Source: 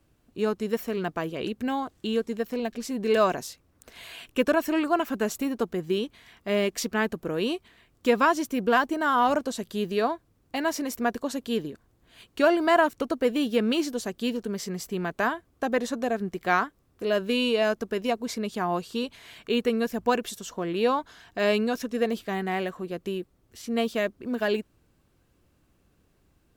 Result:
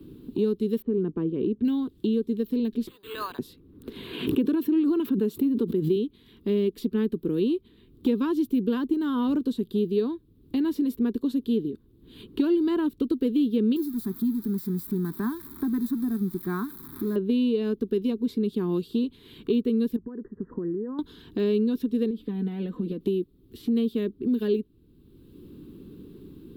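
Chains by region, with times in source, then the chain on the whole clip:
0.82–1.65 LPF 1300 Hz + gate -55 dBFS, range -12 dB
2.87–3.39 inverse Chebyshev high-pass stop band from 320 Hz, stop band 50 dB + careless resampling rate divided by 8×, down none, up hold
4.13–5.96 HPF 120 Hz + backwards sustainer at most 79 dB/s
13.76–17.16 switching spikes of -17.5 dBFS + fixed phaser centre 1200 Hz, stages 4
19.96–20.99 compressor 5:1, threshold -39 dBFS + brick-wall FIR low-pass 2000 Hz
22.1–23.01 high shelf 3300 Hz -12 dB + comb 4 ms, depth 72% + compressor, threshold -32 dBFS
whole clip: EQ curve 120 Hz 0 dB, 260 Hz +6 dB, 420 Hz +4 dB, 660 Hz -26 dB, 980 Hz -14 dB, 2100 Hz -20 dB, 3700 Hz -6 dB, 6200 Hz -26 dB, 13000 Hz -9 dB; three-band squash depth 70%

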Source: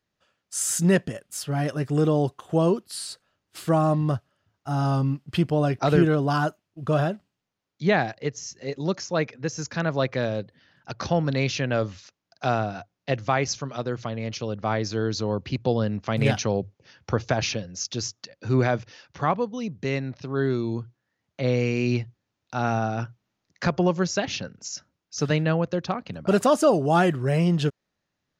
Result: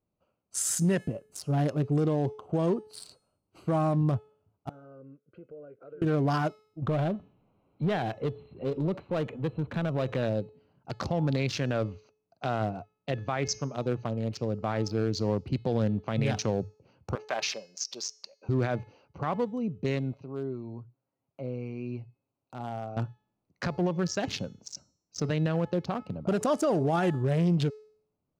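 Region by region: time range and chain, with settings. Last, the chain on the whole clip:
4.69–6.02 double band-pass 870 Hz, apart 1.6 oct + compressor 3:1, threshold -45 dBFS
6.82–10.23 compressor 4:1, threshold -26 dBFS + power-law curve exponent 0.7 + brick-wall FIR low-pass 4200 Hz
17.15–18.49 HPF 680 Hz + notch 1400 Hz, Q 15 + comb 5.1 ms, depth 33%
20.13–22.97 comb 7.4 ms, depth 46% + compressor 1.5:1, threshold -44 dBFS + low shelf 240 Hz -7.5 dB
whole clip: Wiener smoothing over 25 samples; de-hum 429.1 Hz, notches 34; limiter -18.5 dBFS

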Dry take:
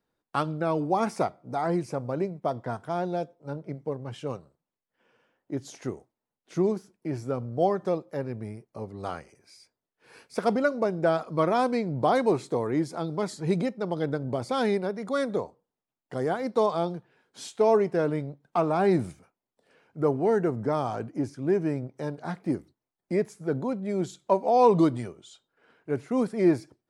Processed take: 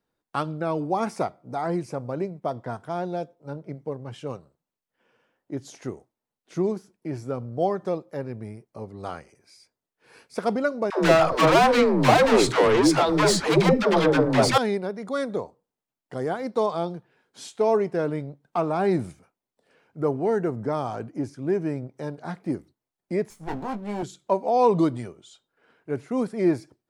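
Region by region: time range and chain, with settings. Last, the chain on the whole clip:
10.9–14.58 overdrive pedal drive 31 dB, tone 4800 Hz, clips at -10.5 dBFS + dispersion lows, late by 0.135 s, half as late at 400 Hz
23.3–24.03 minimum comb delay 0.92 ms + doubler 19 ms -6 dB
whole clip: dry

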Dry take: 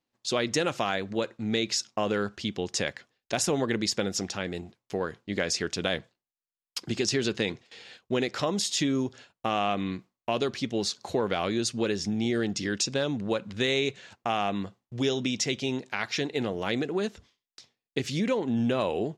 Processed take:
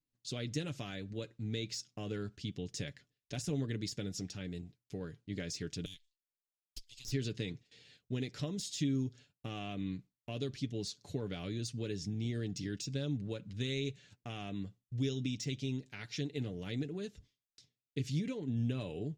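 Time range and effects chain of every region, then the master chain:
5.85–7.12 inverse Chebyshev high-pass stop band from 830 Hz, stop band 60 dB + tube stage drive 27 dB, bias 0.45
whole clip: de-esser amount 55%; passive tone stack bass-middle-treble 10-0-1; comb 6.9 ms, depth 47%; gain +9.5 dB

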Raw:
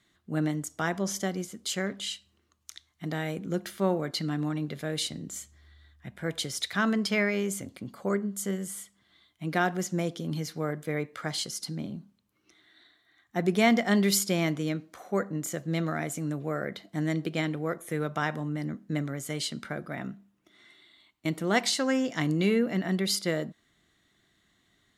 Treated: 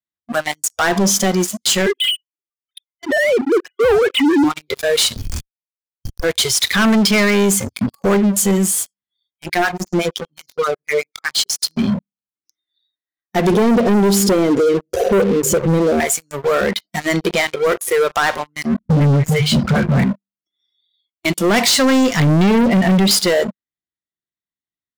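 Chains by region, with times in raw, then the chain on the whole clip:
1.86–4.44 sine-wave speech + air absorption 140 m
5.16–6.24 G.711 law mismatch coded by mu + LPF 6300 Hz + Schmitt trigger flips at -35 dBFS
9.48–11.63 harmonic tremolo 8.1 Hz, depth 100%, crossover 980 Hz + high shelf 7700 Hz -5.5 dB
13.52–16 resonant low shelf 700 Hz +12.5 dB, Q 3 + notches 50/100/150 Hz + compressor 2.5:1, threshold -30 dBFS
18.79–20.04 tone controls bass +14 dB, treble -12 dB + notches 50/100/150/200/250/300/350/400 Hz + dispersion highs, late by 65 ms, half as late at 860 Hz
22.11–23.11 treble ducked by the level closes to 2300 Hz, closed at -22 dBFS + low shelf 170 Hz +9.5 dB
whole clip: spectral noise reduction 27 dB; sample leveller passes 5; maximiser +14 dB; gain -9 dB

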